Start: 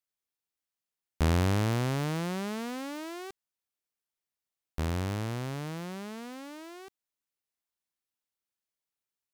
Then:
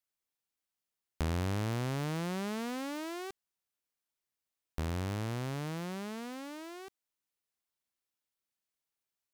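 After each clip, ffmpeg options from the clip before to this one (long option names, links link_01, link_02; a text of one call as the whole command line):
ffmpeg -i in.wav -af "acompressor=threshold=-34dB:ratio=2.5" out.wav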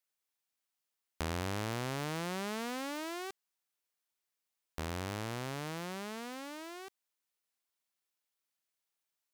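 ffmpeg -i in.wav -af "lowshelf=frequency=290:gain=-9.5,volume=2dB" out.wav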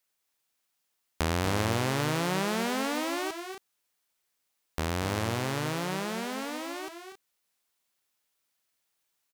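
ffmpeg -i in.wav -af "aecho=1:1:239.1|271.1:0.355|0.316,volume=8dB" out.wav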